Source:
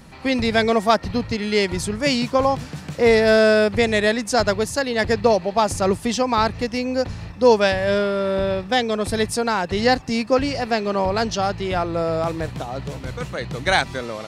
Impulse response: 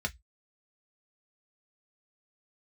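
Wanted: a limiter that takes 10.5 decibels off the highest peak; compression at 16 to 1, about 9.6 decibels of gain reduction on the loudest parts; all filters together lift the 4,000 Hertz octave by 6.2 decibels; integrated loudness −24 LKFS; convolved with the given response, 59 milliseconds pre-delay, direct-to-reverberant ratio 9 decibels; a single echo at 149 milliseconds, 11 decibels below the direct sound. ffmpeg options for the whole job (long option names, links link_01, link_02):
-filter_complex "[0:a]equalizer=frequency=4000:width_type=o:gain=7.5,acompressor=threshold=-19dB:ratio=16,alimiter=limit=-17dB:level=0:latency=1,aecho=1:1:149:0.282,asplit=2[link_01][link_02];[1:a]atrim=start_sample=2205,adelay=59[link_03];[link_02][link_03]afir=irnorm=-1:irlink=0,volume=-13.5dB[link_04];[link_01][link_04]amix=inputs=2:normalize=0,volume=2dB"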